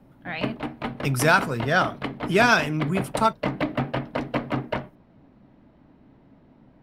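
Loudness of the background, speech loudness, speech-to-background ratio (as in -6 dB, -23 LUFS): -30.5 LUFS, -23.0 LUFS, 7.5 dB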